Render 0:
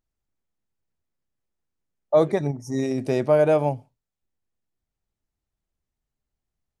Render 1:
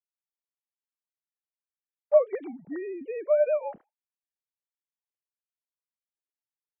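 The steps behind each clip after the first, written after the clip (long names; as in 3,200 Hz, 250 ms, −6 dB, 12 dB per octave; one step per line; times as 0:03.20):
three sine waves on the formant tracks
level −5 dB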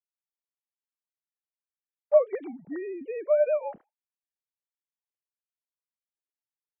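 no processing that can be heard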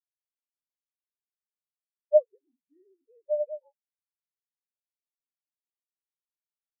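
mains-hum notches 50/100/150/200/250/300/350/400 Hz
every bin expanded away from the loudest bin 2.5 to 1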